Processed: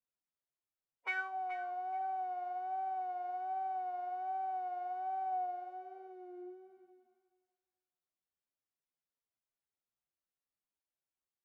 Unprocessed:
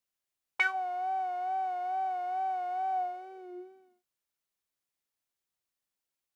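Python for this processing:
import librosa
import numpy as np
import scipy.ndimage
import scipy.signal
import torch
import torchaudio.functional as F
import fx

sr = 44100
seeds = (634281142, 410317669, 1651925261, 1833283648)

y = fx.high_shelf(x, sr, hz=2100.0, db=-12.0)
y = fx.echo_thinned(y, sr, ms=237, feedback_pct=24, hz=610.0, wet_db=-12.0)
y = fx.stretch_vocoder(y, sr, factor=1.8)
y = y * 10.0 ** (-4.5 / 20.0)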